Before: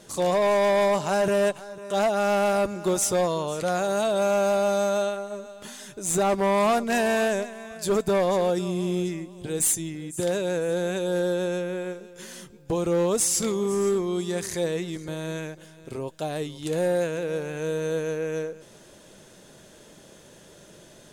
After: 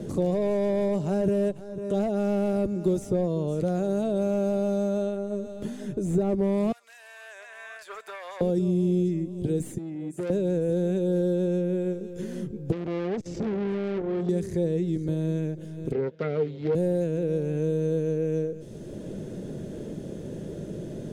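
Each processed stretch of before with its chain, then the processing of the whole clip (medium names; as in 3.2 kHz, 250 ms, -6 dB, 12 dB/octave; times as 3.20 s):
6.72–8.41 s: high-pass 1.2 kHz 24 dB/octave + compression 3:1, threshold -40 dBFS
9.78–10.30 s: high-pass 680 Hz 6 dB/octave + transformer saturation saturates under 3.8 kHz
12.72–14.29 s: low-pass 5.6 kHz 24 dB/octave + transformer saturation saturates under 2 kHz
15.92–16.75 s: self-modulated delay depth 0.61 ms + cabinet simulation 170–4400 Hz, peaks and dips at 310 Hz -6 dB, 460 Hz +9 dB, 1.4 kHz +7 dB, 2.1 kHz +10 dB
whole clip: FFT filter 110 Hz 0 dB, 430 Hz -6 dB, 1 kHz -24 dB, 2.1 kHz -22 dB; three bands compressed up and down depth 70%; trim +7.5 dB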